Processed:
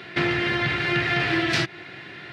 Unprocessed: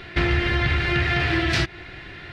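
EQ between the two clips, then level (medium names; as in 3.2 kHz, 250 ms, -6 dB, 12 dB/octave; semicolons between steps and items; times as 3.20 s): high-pass 130 Hz 24 dB/octave; 0.0 dB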